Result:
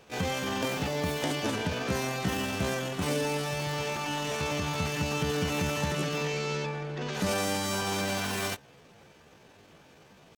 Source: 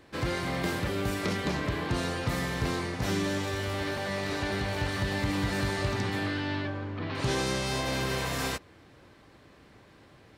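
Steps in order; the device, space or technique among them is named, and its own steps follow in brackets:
chipmunk voice (pitch shifter +7 semitones)

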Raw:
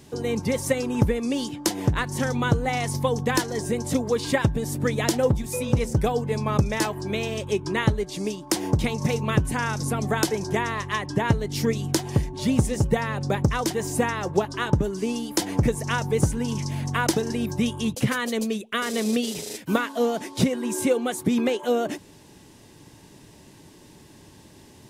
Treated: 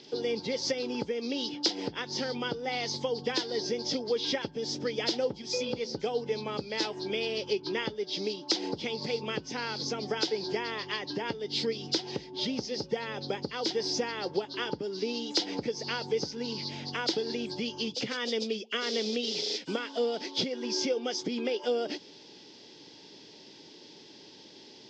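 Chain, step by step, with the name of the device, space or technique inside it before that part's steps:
hearing aid with frequency lowering (hearing-aid frequency compression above 2,700 Hz 1.5 to 1; downward compressor 2.5 to 1, threshold −28 dBFS, peak gain reduction 10 dB; loudspeaker in its box 310–5,700 Hz, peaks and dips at 450 Hz +3 dB, 650 Hz −5 dB, 1,100 Hz −10 dB, 1,700 Hz −5 dB, 3,400 Hz +7 dB, 5,000 Hz +10 dB)

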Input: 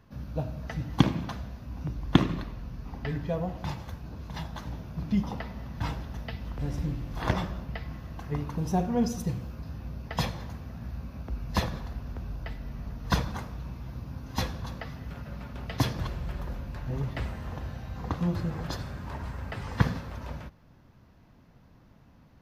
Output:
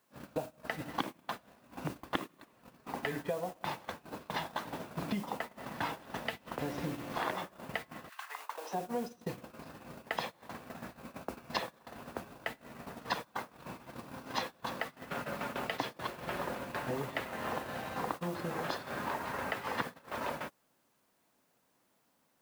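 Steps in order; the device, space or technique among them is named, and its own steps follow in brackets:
baby monitor (band-pass filter 370–3,800 Hz; downward compressor 10 to 1, threshold −45 dBFS, peak gain reduction 25.5 dB; white noise bed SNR 16 dB; noise gate −50 dBFS, range −23 dB)
0:08.08–0:08.73: high-pass filter 1,400 Hz → 430 Hz 24 dB per octave
level +12.5 dB

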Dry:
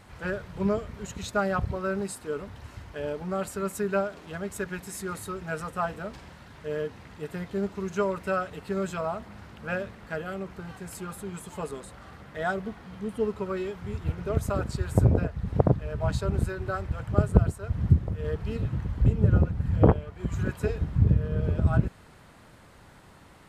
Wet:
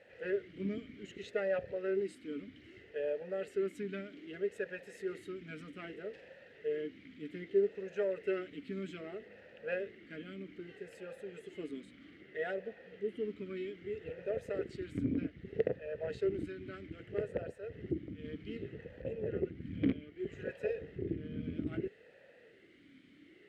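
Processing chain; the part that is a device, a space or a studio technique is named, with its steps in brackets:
talk box (tube saturation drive 18 dB, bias 0.35; formant filter swept between two vowels e-i 0.63 Hz)
level +7 dB

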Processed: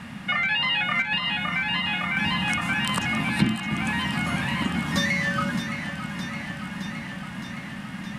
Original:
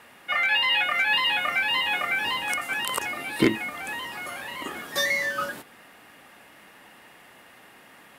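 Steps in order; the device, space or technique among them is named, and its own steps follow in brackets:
0:01.02–0:02.17: noise gate −21 dBFS, range −9 dB
jukebox (low-pass filter 7,500 Hz 12 dB per octave; low shelf with overshoot 280 Hz +13 dB, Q 3; downward compressor 4 to 1, threshold −32 dBFS, peak gain reduction 23 dB)
delay that swaps between a low-pass and a high-pass 308 ms, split 1,200 Hz, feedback 86%, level −8.5 dB
level +8.5 dB

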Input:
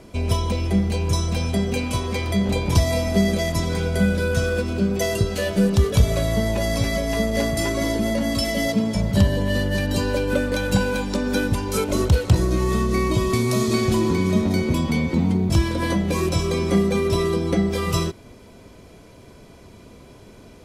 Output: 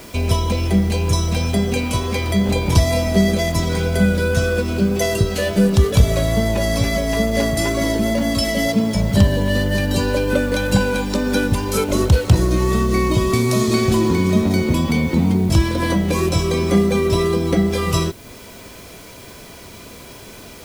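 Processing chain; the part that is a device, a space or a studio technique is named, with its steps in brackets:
noise-reduction cassette on a plain deck (one half of a high-frequency compander encoder only; tape wow and flutter 14 cents; white noise bed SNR 29 dB)
level +3.5 dB

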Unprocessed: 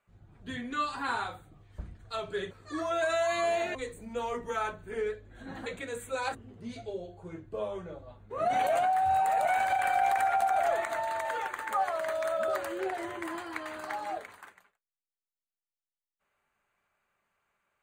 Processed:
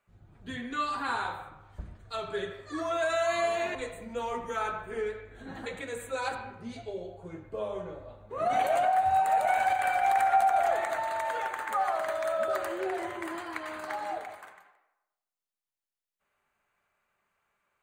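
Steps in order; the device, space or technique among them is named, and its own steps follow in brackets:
filtered reverb send (on a send: high-pass filter 450 Hz + low-pass filter 4,000 Hz 12 dB per octave + convolution reverb RT60 0.95 s, pre-delay 69 ms, DRR 6.5 dB)

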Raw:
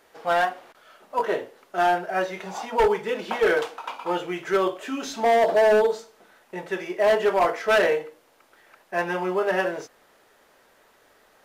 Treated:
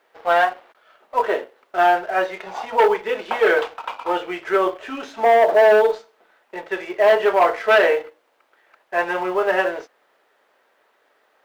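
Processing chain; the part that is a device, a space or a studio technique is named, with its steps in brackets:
0:04.47–0:05.59: dynamic equaliser 4,300 Hz, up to −6 dB, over −44 dBFS, Q 1.2
phone line with mismatched companding (band-pass filter 370–3,500 Hz; mu-law and A-law mismatch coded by A)
level +6 dB

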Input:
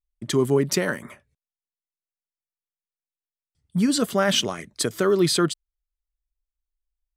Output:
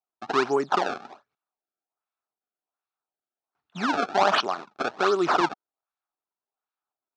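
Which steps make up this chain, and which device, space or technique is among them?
circuit-bent sampling toy (sample-and-hold swept by an LFO 26×, swing 160% 1.3 Hz; loudspeaker in its box 490–4,900 Hz, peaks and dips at 520 Hz −8 dB, 770 Hz +6 dB, 1,300 Hz +6 dB, 2,000 Hz −9 dB, 3,100 Hz −7 dB, 4,700 Hz −4 dB)
level +3 dB

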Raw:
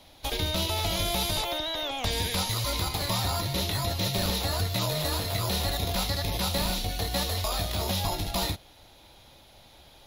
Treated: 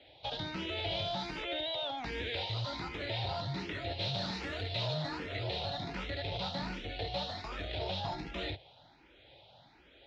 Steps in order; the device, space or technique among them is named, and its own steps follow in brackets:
0:04.00–0:04.95: high-shelf EQ 3,500 Hz +7.5 dB
barber-pole phaser into a guitar amplifier (frequency shifter mixed with the dry sound +1.3 Hz; soft clipping −26 dBFS, distortion −15 dB; loudspeaker in its box 77–3,700 Hz, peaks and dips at 82 Hz −10 dB, 210 Hz −8 dB, 1,100 Hz −9 dB)

